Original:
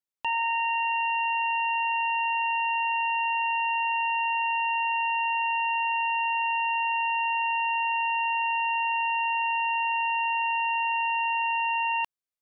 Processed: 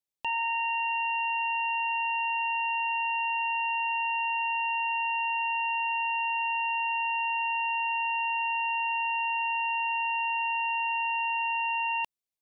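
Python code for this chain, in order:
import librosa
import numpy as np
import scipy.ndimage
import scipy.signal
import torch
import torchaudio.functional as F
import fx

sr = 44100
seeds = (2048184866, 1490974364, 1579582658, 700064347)

y = fx.peak_eq(x, sr, hz=1400.0, db=-13.5, octaves=0.61)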